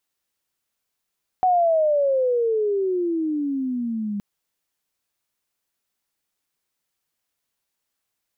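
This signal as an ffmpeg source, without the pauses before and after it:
ffmpeg -f lavfi -i "aevalsrc='pow(10,(-14.5-9.5*t/2.77)/20)*sin(2*PI*750*2.77/log(200/750)*(exp(log(200/750)*t/2.77)-1))':duration=2.77:sample_rate=44100" out.wav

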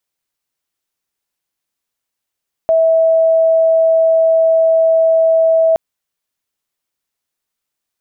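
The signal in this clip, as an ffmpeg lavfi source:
ffmpeg -f lavfi -i "aevalsrc='0.398*sin(2*PI*651*t)':duration=3.07:sample_rate=44100" out.wav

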